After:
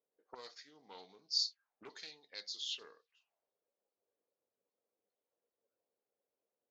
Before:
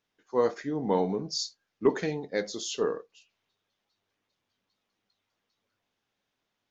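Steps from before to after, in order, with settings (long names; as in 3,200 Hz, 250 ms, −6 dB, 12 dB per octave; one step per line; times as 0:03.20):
envelope filter 490–4,500 Hz, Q 3.8, up, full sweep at −30.5 dBFS
highs frequency-modulated by the lows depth 0.22 ms
level +1 dB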